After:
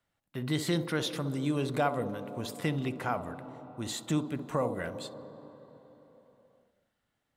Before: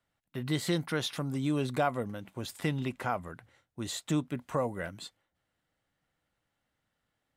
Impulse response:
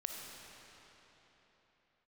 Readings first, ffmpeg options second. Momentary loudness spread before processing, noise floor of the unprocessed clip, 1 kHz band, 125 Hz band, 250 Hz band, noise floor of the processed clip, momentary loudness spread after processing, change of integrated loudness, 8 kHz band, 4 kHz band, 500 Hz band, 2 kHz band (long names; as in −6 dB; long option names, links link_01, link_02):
14 LU, −83 dBFS, +0.5 dB, +0.5 dB, +0.5 dB, −82 dBFS, 14 LU, +0.5 dB, 0.0 dB, 0.0 dB, +1.5 dB, 0.0 dB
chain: -filter_complex "[0:a]asplit=2[link_01][link_02];[link_02]equalizer=frequency=125:width_type=o:width=1:gain=7,equalizer=frequency=250:width_type=o:width=1:gain=11,equalizer=frequency=500:width_type=o:width=1:gain=11,equalizer=frequency=1000:width_type=o:width=1:gain=10,equalizer=frequency=2000:width_type=o:width=1:gain=-4,equalizer=frequency=4000:width_type=o:width=1:gain=3,equalizer=frequency=8000:width_type=o:width=1:gain=-7[link_03];[1:a]atrim=start_sample=2205,adelay=65[link_04];[link_03][link_04]afir=irnorm=-1:irlink=0,volume=-19dB[link_05];[link_01][link_05]amix=inputs=2:normalize=0"